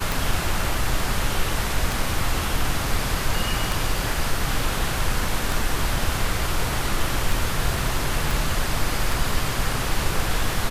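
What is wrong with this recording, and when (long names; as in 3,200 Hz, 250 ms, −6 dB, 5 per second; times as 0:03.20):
scratch tick 33 1/3 rpm
0:08.31: click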